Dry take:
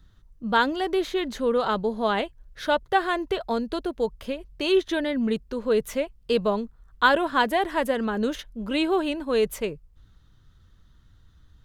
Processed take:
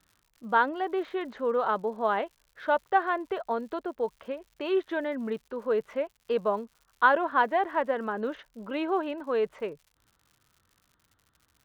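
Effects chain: low-pass 1.3 kHz 12 dB/octave; crackle 140 per s -51 dBFS; high-pass 990 Hz 6 dB/octave; trim +3.5 dB

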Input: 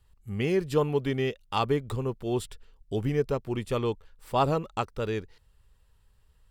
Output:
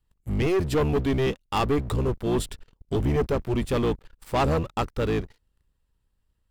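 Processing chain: octave divider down 1 oct, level -1 dB; waveshaping leveller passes 3; trim -5 dB

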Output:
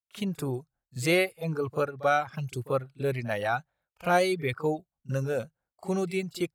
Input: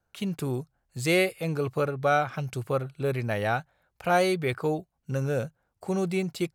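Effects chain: expander -56 dBFS; reverb removal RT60 1.7 s; pre-echo 39 ms -18 dB

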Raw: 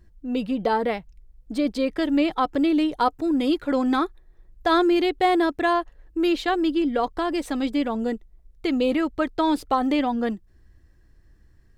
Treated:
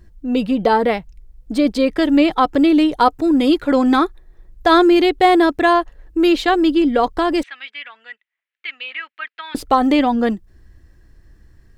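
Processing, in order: 7.43–9.55 s: Butterworth band-pass 2.2 kHz, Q 1.6; trim +7.5 dB

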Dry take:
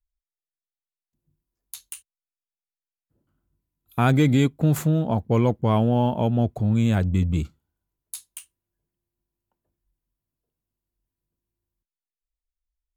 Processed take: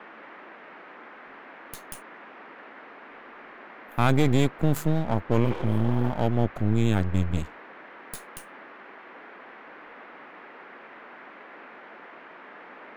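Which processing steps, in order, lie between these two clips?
spectral replace 5.47–6.08 s, 270–7500 Hz both; half-wave rectifier; band noise 220–2000 Hz -46 dBFS

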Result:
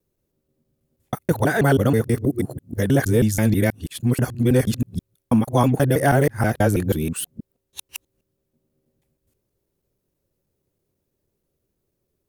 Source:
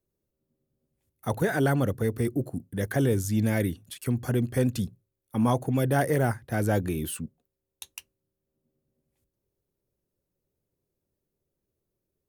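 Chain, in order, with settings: time reversed locally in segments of 161 ms; trim +7 dB

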